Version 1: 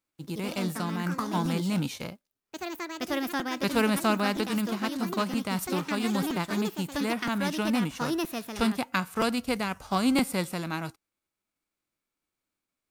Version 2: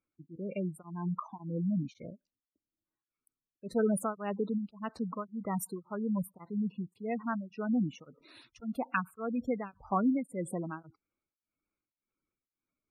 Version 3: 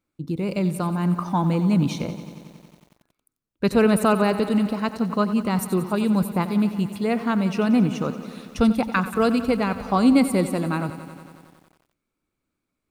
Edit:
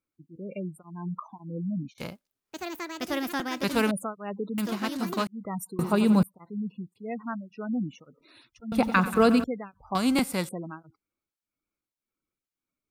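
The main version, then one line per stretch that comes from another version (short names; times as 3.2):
2
1.98–3.91 from 1
4.58–5.27 from 1
5.79–6.23 from 3
8.72–9.44 from 3
9.95–10.49 from 1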